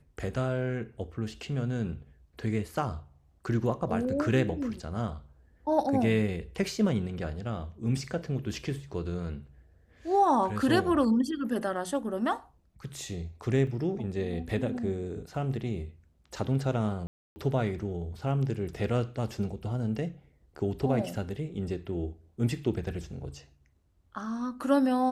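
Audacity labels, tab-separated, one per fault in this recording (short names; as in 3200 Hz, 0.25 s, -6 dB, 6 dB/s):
13.670000	13.670000	gap 2 ms
17.070000	17.360000	gap 0.29 s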